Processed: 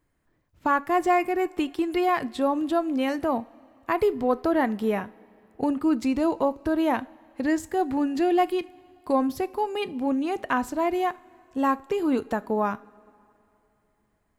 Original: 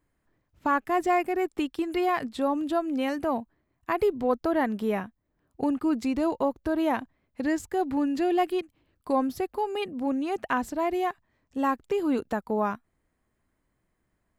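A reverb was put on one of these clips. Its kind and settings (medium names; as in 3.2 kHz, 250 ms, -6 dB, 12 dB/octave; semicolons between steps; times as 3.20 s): two-slope reverb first 0.35 s, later 3 s, from -18 dB, DRR 15 dB; trim +2 dB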